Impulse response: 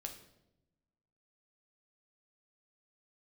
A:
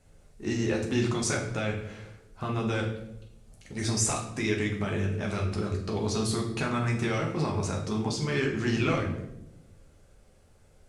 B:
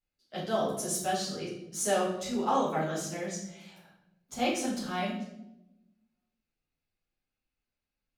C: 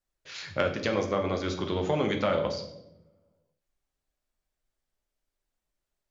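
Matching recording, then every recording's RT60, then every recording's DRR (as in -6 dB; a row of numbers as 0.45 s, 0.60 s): C; 0.90 s, 0.90 s, 0.90 s; -1.5 dB, -10.0 dB, 3.0 dB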